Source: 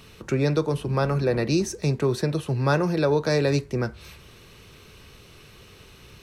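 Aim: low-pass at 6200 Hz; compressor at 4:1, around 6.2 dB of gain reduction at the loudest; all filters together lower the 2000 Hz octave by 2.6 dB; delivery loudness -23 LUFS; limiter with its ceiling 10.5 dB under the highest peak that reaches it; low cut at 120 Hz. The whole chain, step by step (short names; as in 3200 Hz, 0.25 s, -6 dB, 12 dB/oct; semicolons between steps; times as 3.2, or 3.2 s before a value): HPF 120 Hz; LPF 6200 Hz; bell 2000 Hz -3.5 dB; compressor 4:1, threshold -25 dBFS; gain +11.5 dB; limiter -14 dBFS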